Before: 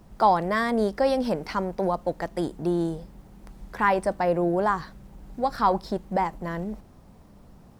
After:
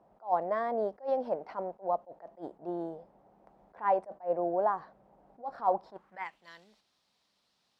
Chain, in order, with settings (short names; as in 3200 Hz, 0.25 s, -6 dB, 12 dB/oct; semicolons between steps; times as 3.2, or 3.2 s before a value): band-pass sweep 680 Hz -> 4000 Hz, 5.8–6.48; attack slew limiter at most 270 dB/s